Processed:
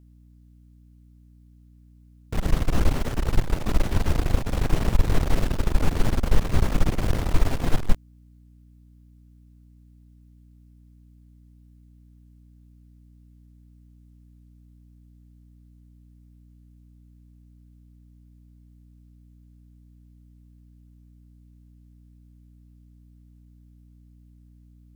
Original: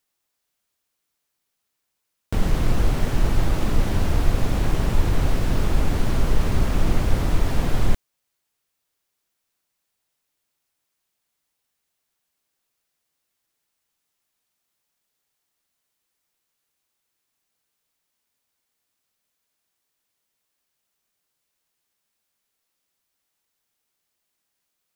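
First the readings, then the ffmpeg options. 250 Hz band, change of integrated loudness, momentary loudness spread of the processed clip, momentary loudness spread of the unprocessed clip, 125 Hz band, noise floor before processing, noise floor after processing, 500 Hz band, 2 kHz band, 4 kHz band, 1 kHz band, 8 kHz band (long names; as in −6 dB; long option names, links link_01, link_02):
−2.0 dB, −2.0 dB, 4 LU, 2 LU, −2.0 dB, −78 dBFS, −53 dBFS, −2.0 dB, −2.0 dB, −2.0 dB, −2.0 dB, −2.0 dB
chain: -af "aeval=exprs='0.631*(cos(1*acos(clip(val(0)/0.631,-1,1)))-cos(1*PI/2))+0.158*(cos(4*acos(clip(val(0)/0.631,-1,1)))-cos(4*PI/2))':channel_layout=same,aeval=exprs='val(0)+0.00447*(sin(2*PI*60*n/s)+sin(2*PI*2*60*n/s)/2+sin(2*PI*3*60*n/s)/3+sin(2*PI*4*60*n/s)/4+sin(2*PI*5*60*n/s)/5)':channel_layout=same,volume=-3.5dB"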